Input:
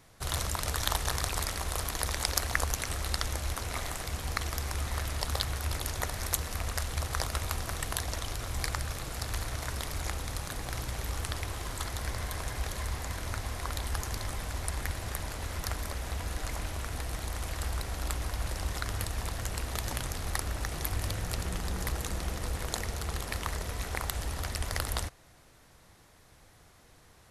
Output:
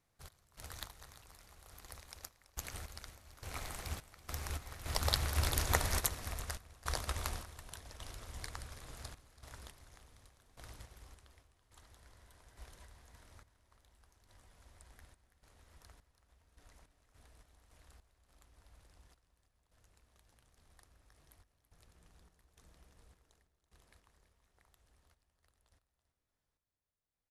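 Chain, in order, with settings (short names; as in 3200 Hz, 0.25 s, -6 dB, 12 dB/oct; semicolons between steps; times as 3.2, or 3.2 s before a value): Doppler pass-by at 5.91, 19 m/s, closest 22 m; random-step tremolo, depth 95%; echo 0.331 s -13.5 dB; on a send at -18 dB: reverb RT60 3.1 s, pre-delay 4 ms; on the sum: upward expander 1.5:1, over -52 dBFS; gain +4.5 dB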